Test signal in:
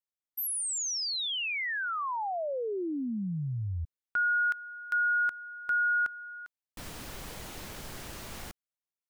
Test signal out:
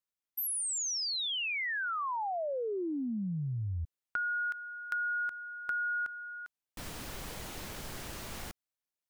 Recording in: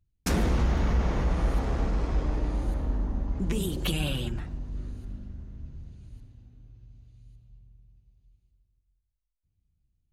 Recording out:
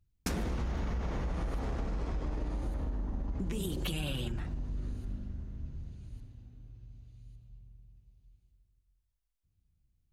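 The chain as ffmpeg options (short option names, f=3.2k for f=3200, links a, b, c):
-af "acompressor=threshold=-33dB:ratio=5:attack=15:release=99:knee=1:detection=peak"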